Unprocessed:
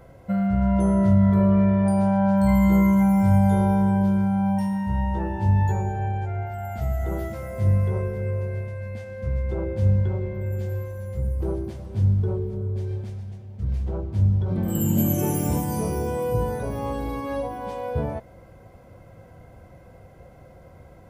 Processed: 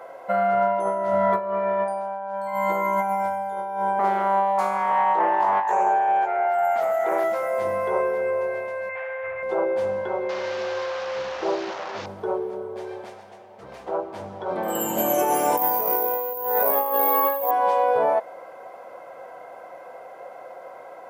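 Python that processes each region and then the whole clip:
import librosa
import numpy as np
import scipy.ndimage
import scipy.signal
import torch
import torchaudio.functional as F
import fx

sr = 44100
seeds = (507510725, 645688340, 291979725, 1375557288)

y = fx.chain(x, sr, fx.highpass(hz=200.0, slope=12),
    fx.doppler_dist(depth_ms=0.44), at=(3.99, 7.24))
y = fx.chain(y, sr, fx.curve_eq(hz=(110.0, 200.0, 340.0, 630.0, 1500.0, 2200.0, 4200.0, 6300.0), db=(0, -28, -13, -5, 4, 9, -18, -26)),
    fx.room_flutter(wall_m=11.5, rt60_s=1.2), at=(8.89, 9.43))
y = fx.chain(y, sr, fx.delta_mod(bps=32000, step_db=-34.5),
    fx.resample_bad(factor=2, down='none', up='filtered'), at=(10.29, 12.06))
y = fx.chain(y, sr, fx.high_shelf(hz=6900.0, db=-7.0),
    fx.resample_bad(factor=3, down='filtered', up='zero_stuff'), at=(15.57, 17.51))
y = scipy.signal.sosfilt(scipy.signal.butter(2, 590.0, 'highpass', fs=sr, output='sos'), y)
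y = fx.peak_eq(y, sr, hz=780.0, db=14.0, octaves=2.8)
y = fx.over_compress(y, sr, threshold_db=-21.0, ratio=-0.5)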